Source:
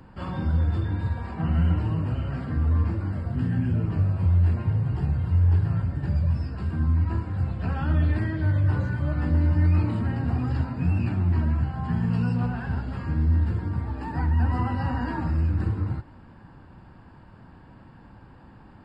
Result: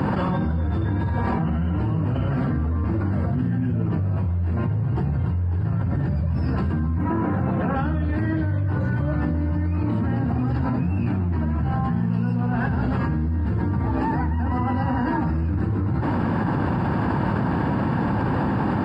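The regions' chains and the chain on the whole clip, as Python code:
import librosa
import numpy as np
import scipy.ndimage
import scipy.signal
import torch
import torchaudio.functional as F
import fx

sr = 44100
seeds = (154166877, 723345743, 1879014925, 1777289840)

y = fx.chain(x, sr, fx.bandpass_edges(low_hz=170.0, high_hz=2200.0),
    fx.quant_float(bits=6), at=(6.98, 7.76))
y = scipy.signal.sosfilt(scipy.signal.butter(2, 110.0, 'highpass', fs=sr, output='sos'), y)
y = fx.high_shelf(y, sr, hz=2300.0, db=-10.5)
y = fx.env_flatten(y, sr, amount_pct=100)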